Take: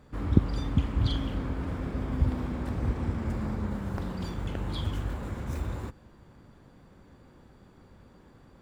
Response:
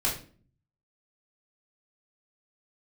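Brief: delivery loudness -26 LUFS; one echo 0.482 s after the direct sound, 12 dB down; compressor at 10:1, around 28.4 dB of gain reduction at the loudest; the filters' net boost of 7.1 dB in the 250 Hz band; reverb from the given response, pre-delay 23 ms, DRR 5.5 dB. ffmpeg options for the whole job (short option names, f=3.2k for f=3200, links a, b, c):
-filter_complex "[0:a]equalizer=f=250:t=o:g=8.5,acompressor=threshold=-40dB:ratio=10,aecho=1:1:482:0.251,asplit=2[a][b];[1:a]atrim=start_sample=2205,adelay=23[c];[b][c]afir=irnorm=-1:irlink=0,volume=-14dB[d];[a][d]amix=inputs=2:normalize=0,volume=17dB"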